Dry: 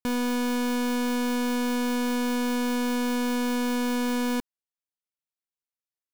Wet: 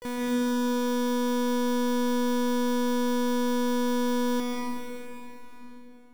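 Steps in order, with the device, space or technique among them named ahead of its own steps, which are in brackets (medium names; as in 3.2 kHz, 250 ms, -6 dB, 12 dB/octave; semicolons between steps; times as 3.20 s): shimmer-style reverb (harmony voices +12 st -8 dB; reverberation RT60 4.1 s, pre-delay 116 ms, DRR -1.5 dB); band-stop 6.7 kHz, Q 17; trim -6.5 dB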